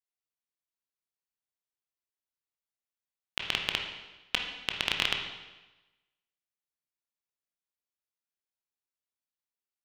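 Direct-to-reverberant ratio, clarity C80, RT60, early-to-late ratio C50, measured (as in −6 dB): 2.0 dB, 7.5 dB, 1.1 s, 5.0 dB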